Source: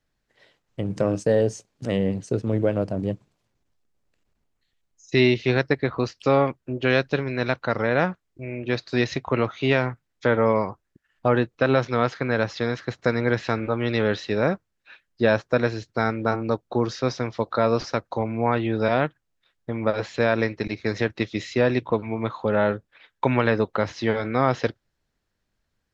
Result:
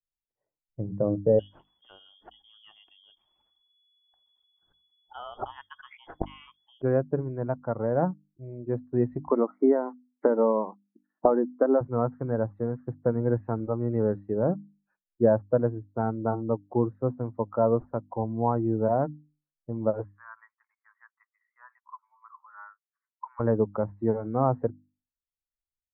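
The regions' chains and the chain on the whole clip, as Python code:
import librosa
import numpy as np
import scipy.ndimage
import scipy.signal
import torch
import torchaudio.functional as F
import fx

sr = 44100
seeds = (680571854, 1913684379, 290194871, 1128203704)

y = fx.chain(x, sr, fx.tilt_eq(slope=-3.5),
    fx.freq_invert(carrier_hz=3400),
    fx.env_flatten(amount_pct=70), at=(1.39, 6.82))
y = fx.chain(y, sr, fx.brickwall_bandpass(low_hz=190.0, high_hz=2300.0),
    fx.band_squash(depth_pct=100), at=(9.3, 11.81))
y = fx.chain(y, sr, fx.ellip_highpass(hz=1100.0, order=4, stop_db=80),
    fx.band_shelf(hz=3600.0, db=-13.5, octaves=1.3), at=(20.04, 23.4))
y = fx.bin_expand(y, sr, power=1.5)
y = scipy.signal.sosfilt(scipy.signal.cheby2(4, 70, 4400.0, 'lowpass', fs=sr, output='sos'), y)
y = fx.hum_notches(y, sr, base_hz=50, count=6)
y = y * 10.0 ** (1.0 / 20.0)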